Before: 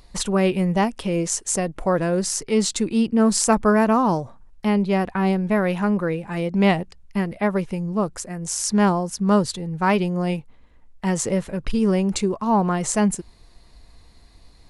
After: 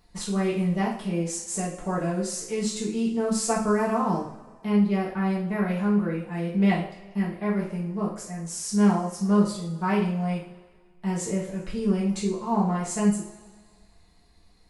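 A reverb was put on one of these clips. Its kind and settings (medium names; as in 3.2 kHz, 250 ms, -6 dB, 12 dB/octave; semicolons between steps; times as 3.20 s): two-slope reverb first 0.45 s, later 1.8 s, from -18 dB, DRR -7 dB; trim -14.5 dB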